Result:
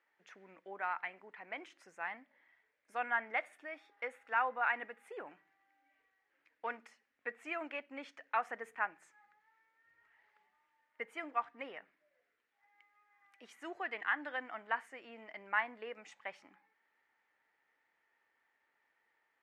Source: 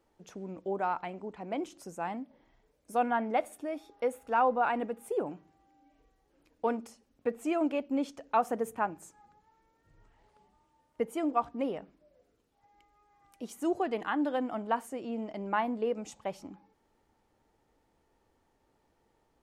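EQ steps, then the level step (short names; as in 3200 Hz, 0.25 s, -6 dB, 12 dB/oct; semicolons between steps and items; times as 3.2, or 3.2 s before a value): band-pass 1900 Hz, Q 3.7; +8.0 dB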